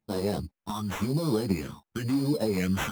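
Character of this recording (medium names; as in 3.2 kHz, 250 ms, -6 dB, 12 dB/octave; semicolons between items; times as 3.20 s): phasing stages 4, 0.96 Hz, lowest notch 500–2500 Hz; aliases and images of a low sample rate 4.6 kHz, jitter 0%; a shimmering, thickened sound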